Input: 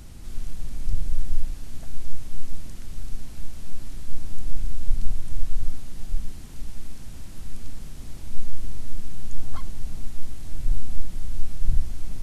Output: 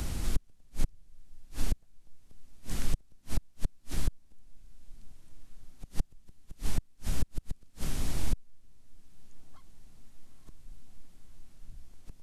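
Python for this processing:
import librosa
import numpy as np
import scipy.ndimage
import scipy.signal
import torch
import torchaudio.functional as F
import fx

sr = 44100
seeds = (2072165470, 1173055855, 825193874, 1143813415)

p1 = fx.low_shelf(x, sr, hz=200.0, db=-5.0)
p2 = p1 + fx.echo_diffused(p1, sr, ms=927, feedback_pct=49, wet_db=-11.5, dry=0)
p3 = fx.gate_flip(p2, sr, shuts_db=-22.0, range_db=-38)
p4 = fx.band_squash(p3, sr, depth_pct=40)
y = p4 * 10.0 ** (9.5 / 20.0)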